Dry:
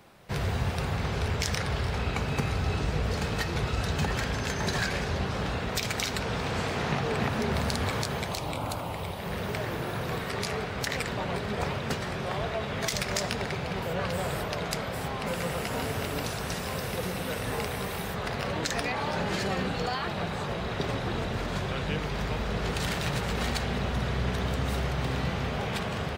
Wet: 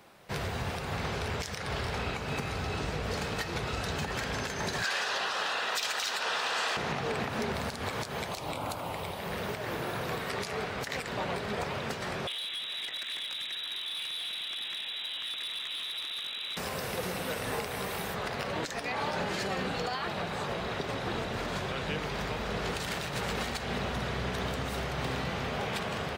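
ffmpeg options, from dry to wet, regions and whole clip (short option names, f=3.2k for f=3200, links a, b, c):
-filter_complex "[0:a]asettb=1/sr,asplit=3[a][b][c];[a]atrim=end=4.844[d];[b]atrim=start=4.84:end=6.77,asetpts=PTS-STARTPTS,afade=t=in:d=0.004:c=qsin,afade=t=out:st=1.926:d=0.004:c=qsin,highpass=f=1.2k:p=1,bandreject=f=2.2k:w=5.8,asplit=2[e][f];[f]highpass=f=720:p=1,volume=17dB,asoftclip=type=tanh:threshold=-12.5dB[g];[e][g]amix=inputs=2:normalize=0,lowpass=f=4.9k:p=1,volume=-6dB[h];[c]atrim=start=6.766[i];[d][h]acrossfade=d=0.004:c1=hsin:c2=qsin[j];[j][i]acrossfade=d=0.004:c1=qsin:c2=hsin,asettb=1/sr,asplit=3[k][l][m];[k]atrim=end=12.274[n];[l]atrim=start=12.27:end=16.57,asetpts=PTS-STARTPTS,afade=t=in:d=0.004:c=qsin,afade=t=out:st=4.296:d=0.004:c=qsin,lowpass=f=3.4k:t=q:w=0.5098,lowpass=f=3.4k:t=q:w=0.6013,lowpass=f=3.4k:t=q:w=0.9,lowpass=f=3.4k:t=q:w=2.563,afreqshift=-4000,volume=28dB,asoftclip=hard,volume=-28dB,acrossover=split=530|1700[o][p][q];[o]acompressor=threshold=-54dB:ratio=4[r];[p]acompressor=threshold=-55dB:ratio=4[s];[q]acompressor=threshold=-35dB:ratio=4[t];[r][s][t]amix=inputs=3:normalize=0[u];[m]atrim=start=16.566[v];[n][u]acrossfade=d=0.004:c1=hsin:c2=qsin[w];[w][v]acrossfade=d=0.004:c1=qsin:c2=hsin,lowshelf=f=170:g=-9,alimiter=limit=-22.5dB:level=0:latency=1:release=148"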